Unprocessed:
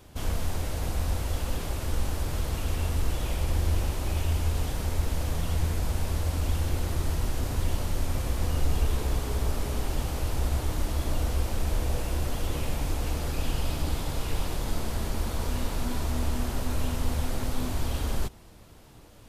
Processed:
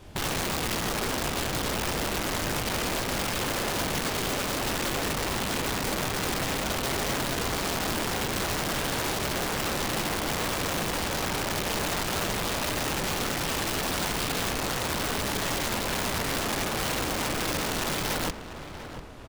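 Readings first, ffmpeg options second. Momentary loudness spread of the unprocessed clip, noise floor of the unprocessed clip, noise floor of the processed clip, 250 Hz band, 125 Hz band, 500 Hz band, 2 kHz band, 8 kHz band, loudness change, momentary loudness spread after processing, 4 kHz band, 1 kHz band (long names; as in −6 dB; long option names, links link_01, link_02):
4 LU, −50 dBFS, −39 dBFS, +3.5 dB, −6.5 dB, +6.0 dB, +11.5 dB, +8.5 dB, +3.0 dB, 1 LU, +10.0 dB, +8.0 dB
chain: -filter_complex "[0:a]acrossover=split=5800[link_01][link_02];[link_02]acompressor=threshold=-54dB:ratio=4:attack=1:release=60[link_03];[link_01][link_03]amix=inputs=2:normalize=0,highshelf=frequency=10000:gain=-11.5,acontrast=24,flanger=delay=22.5:depth=7:speed=0.25,aeval=exprs='(mod(23.7*val(0)+1,2)-1)/23.7':channel_layout=same,acrusher=bits=8:mode=log:mix=0:aa=0.000001,asplit=2[link_04][link_05];[link_05]adelay=693,lowpass=frequency=2600:poles=1,volume=-11dB,asplit=2[link_06][link_07];[link_07]adelay=693,lowpass=frequency=2600:poles=1,volume=0.49,asplit=2[link_08][link_09];[link_09]adelay=693,lowpass=frequency=2600:poles=1,volume=0.49,asplit=2[link_10][link_11];[link_11]adelay=693,lowpass=frequency=2600:poles=1,volume=0.49,asplit=2[link_12][link_13];[link_13]adelay=693,lowpass=frequency=2600:poles=1,volume=0.49[link_14];[link_04][link_06][link_08][link_10][link_12][link_14]amix=inputs=6:normalize=0,volume=3dB"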